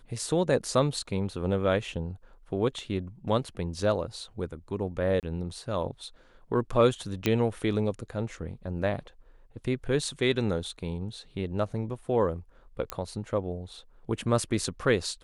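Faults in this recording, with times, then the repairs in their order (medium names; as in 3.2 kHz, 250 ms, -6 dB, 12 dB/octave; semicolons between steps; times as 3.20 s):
5.20–5.23 s: dropout 28 ms
7.26 s: pop -11 dBFS
12.90 s: pop -15 dBFS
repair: de-click; interpolate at 5.20 s, 28 ms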